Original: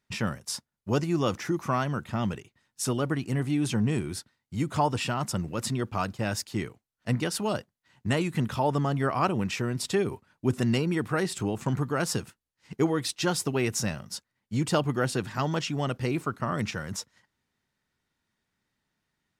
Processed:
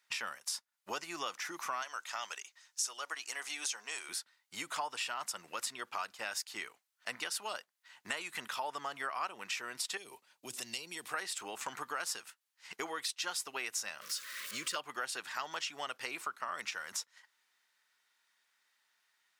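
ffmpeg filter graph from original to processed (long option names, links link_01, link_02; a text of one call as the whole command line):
ffmpeg -i in.wav -filter_complex "[0:a]asettb=1/sr,asplit=3[link_01][link_02][link_03];[link_01]atrim=end=1.824[link_04];[link_02]atrim=start=1.82:end=4.09,asetpts=PTS-STARTPTS,afade=type=in:duration=0.004:curve=qsin,afade=type=out:start_time=2.266:duration=0.004:curve=qsin,highpass=530,equalizer=frequency=6100:width_type=o:width=0.8:gain=10.5[link_05];[link_03]atrim=start=4.086[link_06];[link_04][link_05]acrossfade=duration=0.004:curve1=hsin:curve2=qsin[link_07];[link_07][link_06]acrossfade=duration=0.004:curve1=qsin:curve2=hsin,asettb=1/sr,asplit=3[link_08][link_09][link_10];[link_08]atrim=end=9.974[link_11];[link_09]atrim=start=9.97:end=11.14,asetpts=PTS-STARTPTS,afade=type=in:duration=0.004:curve=qsin,afade=type=out:start_time=1.166:duration=0.004:curve=qsin,equalizer=frequency=1400:width_type=o:width=1.2:gain=-11.5,acrossover=split=140|3000[link_12][link_13][link_14];[link_13]acompressor=threshold=-34dB:ratio=4:attack=3.2:release=140:knee=2.83:detection=peak[link_15];[link_12][link_15][link_14]amix=inputs=3:normalize=0[link_16];[link_10]atrim=start=11.136[link_17];[link_11][link_16]acrossfade=duration=0.004:curve1=hsin:curve2=qsin[link_18];[link_18][link_17]acrossfade=duration=0.004:curve1=qsin:curve2=hsin,asettb=1/sr,asplit=3[link_19][link_20][link_21];[link_19]atrim=end=14.014[link_22];[link_20]atrim=start=14.01:end=14.76,asetpts=PTS-STARTPTS,afade=type=in:duration=0.004:curve=qsin,afade=type=out:start_time=0.746:duration=0.004:curve=qsin,aeval=exprs='val(0)+0.5*0.0119*sgn(val(0))':channel_layout=same,asuperstop=centerf=800:order=20:qfactor=2.2[link_23];[link_21]atrim=start=14.756[link_24];[link_22][link_23]acrossfade=duration=0.004:curve1=hsin:curve2=qsin[link_25];[link_25][link_24]acrossfade=duration=0.004:curve1=qsin:curve2=hsin,highpass=1100,acompressor=threshold=-46dB:ratio=3,volume=7dB" out.wav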